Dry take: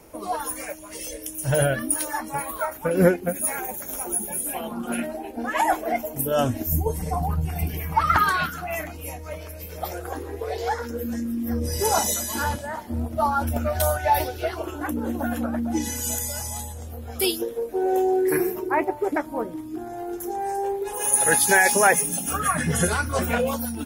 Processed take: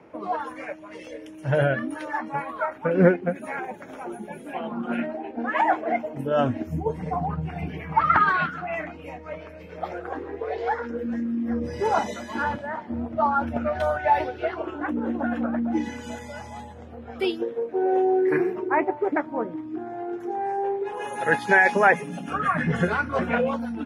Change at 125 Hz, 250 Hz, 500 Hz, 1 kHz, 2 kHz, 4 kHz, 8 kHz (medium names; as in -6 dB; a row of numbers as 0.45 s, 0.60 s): -3.0 dB, +0.5 dB, 0.0 dB, +0.5 dB, +1.0 dB, -8.5 dB, under -25 dB